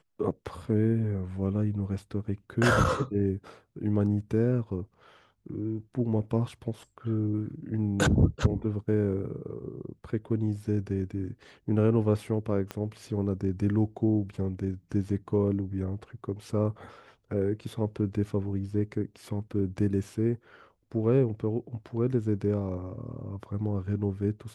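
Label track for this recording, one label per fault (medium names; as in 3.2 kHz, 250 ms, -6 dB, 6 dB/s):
12.710000	12.710000	pop -20 dBFS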